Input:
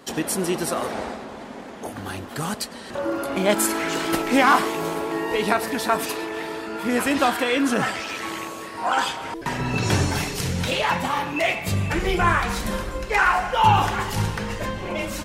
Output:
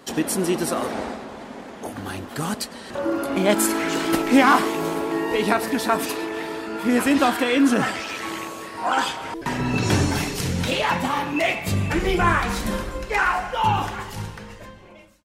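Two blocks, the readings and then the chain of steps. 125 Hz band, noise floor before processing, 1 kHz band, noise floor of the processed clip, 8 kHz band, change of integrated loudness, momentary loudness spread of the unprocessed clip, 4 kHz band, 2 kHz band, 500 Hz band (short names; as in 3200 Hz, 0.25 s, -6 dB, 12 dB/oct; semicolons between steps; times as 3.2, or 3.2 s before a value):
-0.5 dB, -37 dBFS, -1.0 dB, -40 dBFS, 0.0 dB, +1.0 dB, 12 LU, -0.5 dB, -0.5 dB, +0.5 dB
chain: ending faded out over 2.55 s; dynamic EQ 270 Hz, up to +5 dB, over -37 dBFS, Q 1.9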